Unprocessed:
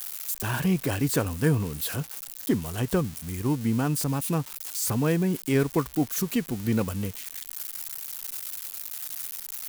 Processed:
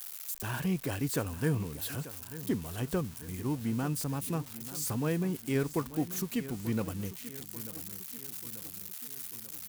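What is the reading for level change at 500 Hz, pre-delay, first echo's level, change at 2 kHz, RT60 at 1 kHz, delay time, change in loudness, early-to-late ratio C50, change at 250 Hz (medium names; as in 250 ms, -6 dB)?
-7.0 dB, no reverb, -15.0 dB, -7.0 dB, no reverb, 889 ms, -7.0 dB, no reverb, -7.0 dB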